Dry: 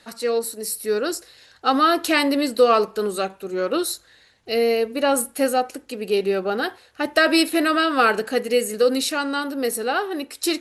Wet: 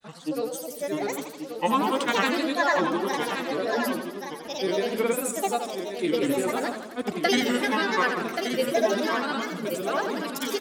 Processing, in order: grains, pitch spread up and down by 7 st; echo 1.129 s -7.5 dB; warbling echo 84 ms, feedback 61%, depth 147 cents, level -7.5 dB; gain -5.5 dB

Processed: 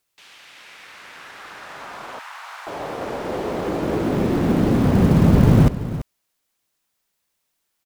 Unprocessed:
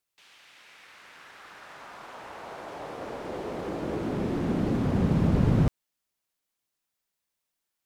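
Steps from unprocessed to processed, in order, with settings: echo 0.336 s -13.5 dB; short-mantissa float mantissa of 4-bit; 2.19–2.67 HPF 1000 Hz 24 dB/oct; gain +9 dB

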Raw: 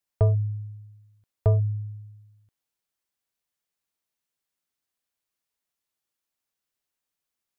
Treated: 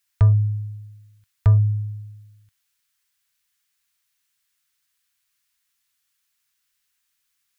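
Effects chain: EQ curve 100 Hz 0 dB, 580 Hz -20 dB, 890 Hz -4 dB, 1600 Hz +6 dB; gain +6.5 dB

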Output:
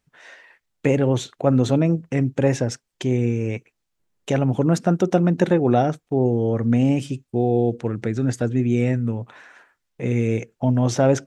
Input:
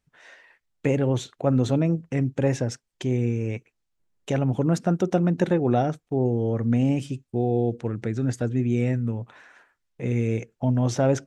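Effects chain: low shelf 95 Hz -5.5 dB; gain +4.5 dB

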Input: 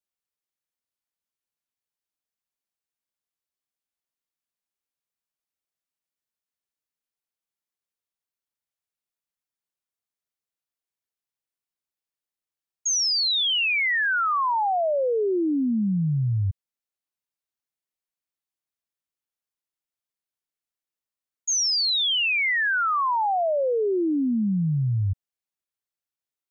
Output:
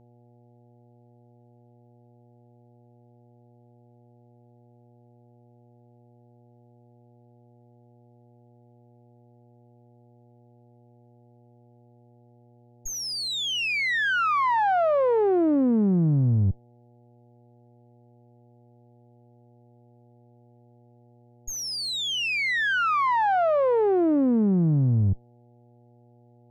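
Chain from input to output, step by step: one diode to ground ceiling -33.5 dBFS; LPF 1500 Hz 6 dB/oct; buzz 120 Hz, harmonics 7, -62 dBFS -5 dB/oct; gain +6 dB

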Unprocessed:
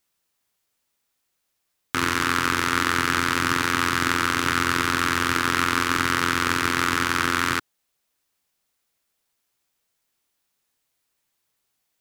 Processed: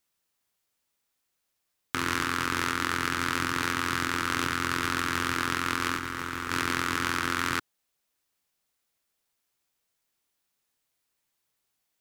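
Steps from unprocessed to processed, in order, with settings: 5.97–6.5 sample leveller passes 2; negative-ratio compressor -24 dBFS, ratio -1; gain -5.5 dB

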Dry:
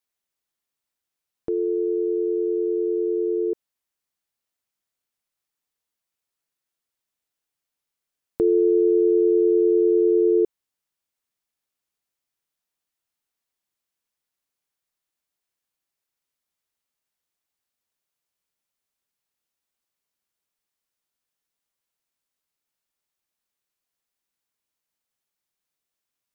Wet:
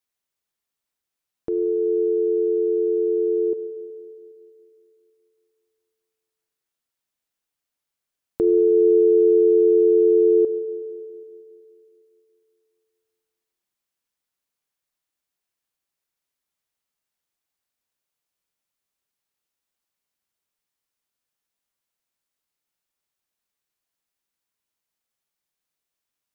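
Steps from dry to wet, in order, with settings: spring tank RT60 2.7 s, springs 34/46 ms, chirp 65 ms, DRR 10.5 dB

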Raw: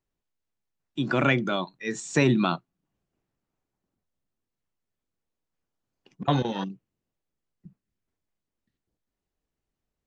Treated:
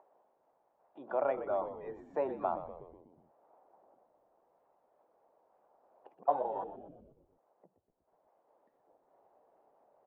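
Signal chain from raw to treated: upward compressor, threshold -30 dBFS; Butterworth band-pass 700 Hz, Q 1.7; on a send: frequency-shifting echo 0.122 s, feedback 57%, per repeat -84 Hz, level -11 dB; on the sum: gain -1 dB

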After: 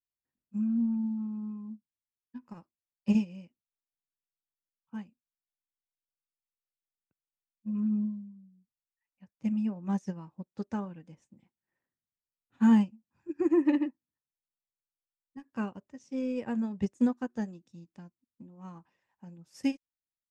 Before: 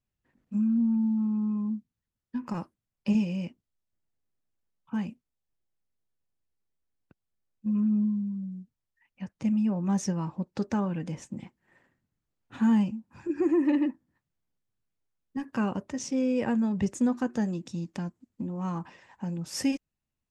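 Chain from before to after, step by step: upward expander 2.5:1, over -37 dBFS; gain +2.5 dB

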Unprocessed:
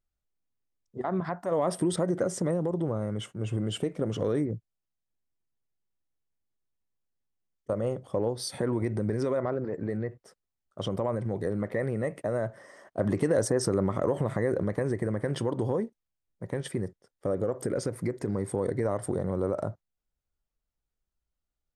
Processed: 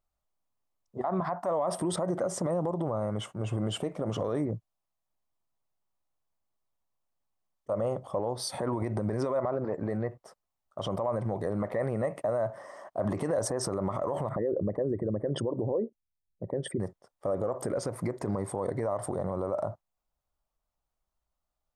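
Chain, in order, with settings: 14.29–16.8 formant sharpening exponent 2; band shelf 840 Hz +9.5 dB 1.3 oct; limiter -21 dBFS, peak gain reduction 11.5 dB

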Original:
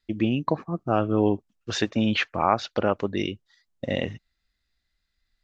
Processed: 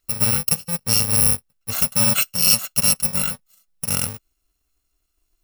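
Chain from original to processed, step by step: FFT order left unsorted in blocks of 128 samples; 1.78–3.88 comb 5.4 ms, depth 56%; gain +4.5 dB

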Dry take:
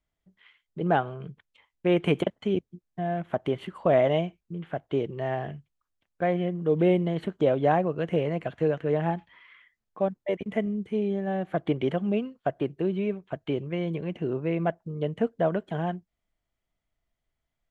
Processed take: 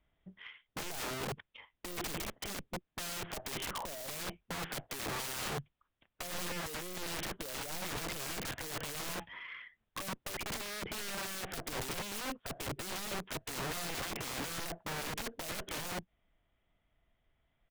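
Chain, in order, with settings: downsampling 8000 Hz; tube stage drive 34 dB, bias 0.3; wrapped overs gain 41 dB; gain +8 dB

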